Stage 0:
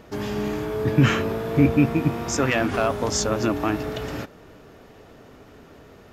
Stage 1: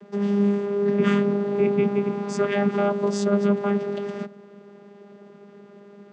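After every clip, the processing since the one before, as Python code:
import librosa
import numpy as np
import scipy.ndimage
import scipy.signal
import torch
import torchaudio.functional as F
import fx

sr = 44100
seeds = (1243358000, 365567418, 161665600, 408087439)

y = fx.vocoder(x, sr, bands=16, carrier='saw', carrier_hz=202.0)
y = F.gain(torch.from_numpy(y), 1.0).numpy()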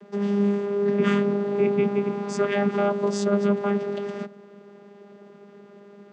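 y = fx.low_shelf(x, sr, hz=98.0, db=-8.5)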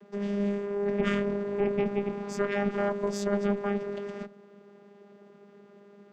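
y = fx.tube_stage(x, sr, drive_db=14.0, bias=0.75)
y = F.gain(torch.from_numpy(y), -1.5).numpy()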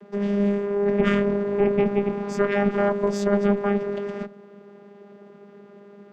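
y = fx.high_shelf(x, sr, hz=3900.0, db=-7.5)
y = F.gain(torch.from_numpy(y), 7.0).numpy()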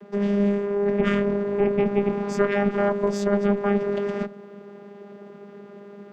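y = fx.rider(x, sr, range_db=4, speed_s=0.5)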